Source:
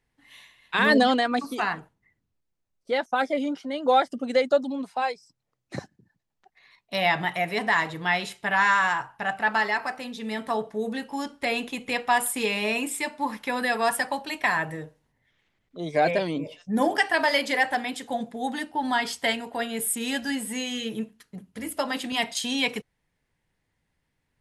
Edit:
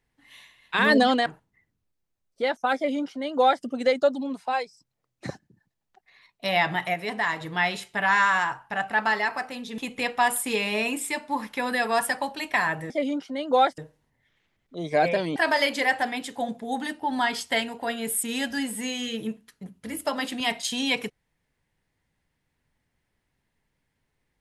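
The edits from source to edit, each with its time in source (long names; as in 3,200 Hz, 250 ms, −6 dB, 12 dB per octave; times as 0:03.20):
0:01.26–0:01.75: remove
0:03.25–0:04.13: duplicate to 0:14.80
0:07.43–0:07.90: clip gain −3.5 dB
0:10.27–0:11.68: remove
0:16.38–0:17.08: remove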